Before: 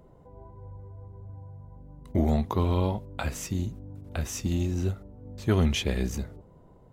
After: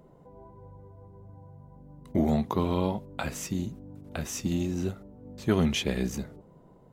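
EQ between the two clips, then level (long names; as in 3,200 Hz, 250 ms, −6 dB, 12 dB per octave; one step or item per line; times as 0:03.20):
low shelf with overshoot 120 Hz −6.5 dB, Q 1.5
0.0 dB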